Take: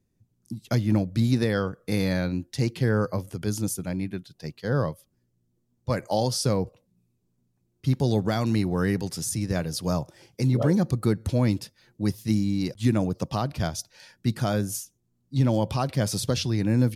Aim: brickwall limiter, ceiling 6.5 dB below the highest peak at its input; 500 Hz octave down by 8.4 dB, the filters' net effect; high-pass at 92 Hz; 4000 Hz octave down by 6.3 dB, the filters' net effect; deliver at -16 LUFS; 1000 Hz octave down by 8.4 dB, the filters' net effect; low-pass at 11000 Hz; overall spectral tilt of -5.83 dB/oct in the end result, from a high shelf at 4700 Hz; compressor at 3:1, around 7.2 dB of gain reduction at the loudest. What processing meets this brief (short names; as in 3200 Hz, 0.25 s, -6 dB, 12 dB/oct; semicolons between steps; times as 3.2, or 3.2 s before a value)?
HPF 92 Hz; LPF 11000 Hz; bell 500 Hz -8.5 dB; bell 1000 Hz -8 dB; bell 4000 Hz -5 dB; high shelf 4700 Hz -4.5 dB; compressor 3:1, threshold -29 dBFS; gain +19.5 dB; limiter -5.5 dBFS